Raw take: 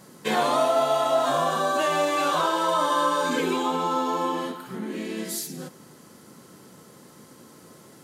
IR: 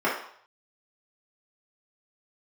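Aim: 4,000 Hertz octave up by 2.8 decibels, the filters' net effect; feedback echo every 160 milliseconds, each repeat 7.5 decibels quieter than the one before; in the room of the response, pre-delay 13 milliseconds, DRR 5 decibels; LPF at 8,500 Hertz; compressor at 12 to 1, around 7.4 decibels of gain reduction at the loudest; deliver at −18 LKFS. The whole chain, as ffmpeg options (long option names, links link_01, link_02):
-filter_complex "[0:a]lowpass=8500,equalizer=frequency=4000:width_type=o:gain=3.5,acompressor=threshold=-25dB:ratio=12,aecho=1:1:160|320|480|640|800:0.422|0.177|0.0744|0.0312|0.0131,asplit=2[link_01][link_02];[1:a]atrim=start_sample=2205,adelay=13[link_03];[link_02][link_03]afir=irnorm=-1:irlink=0,volume=-20.5dB[link_04];[link_01][link_04]amix=inputs=2:normalize=0,volume=10dB"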